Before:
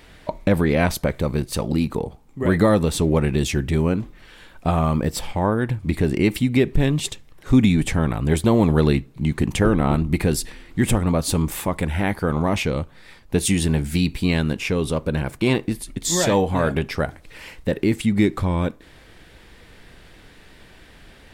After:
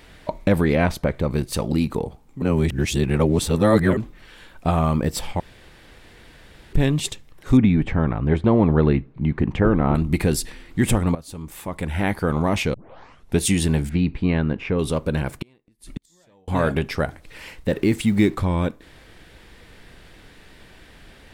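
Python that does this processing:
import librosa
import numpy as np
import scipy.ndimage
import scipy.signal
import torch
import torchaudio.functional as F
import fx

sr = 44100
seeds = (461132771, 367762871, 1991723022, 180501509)

y = fx.high_shelf(x, sr, hz=4800.0, db=-11.0, at=(0.76, 1.31))
y = fx.lowpass(y, sr, hz=2000.0, slope=12, at=(7.57, 9.95))
y = fx.lowpass(y, sr, hz=1900.0, slope=12, at=(13.89, 14.79))
y = fx.gate_flip(y, sr, shuts_db=-17.0, range_db=-38, at=(15.41, 16.48))
y = fx.law_mismatch(y, sr, coded='mu', at=(17.7, 18.35))
y = fx.edit(y, sr, fx.reverse_span(start_s=2.42, length_s=1.55),
    fx.room_tone_fill(start_s=5.4, length_s=1.33),
    fx.fade_in_from(start_s=11.15, length_s=0.89, curve='qua', floor_db=-17.0),
    fx.tape_start(start_s=12.74, length_s=0.65), tone=tone)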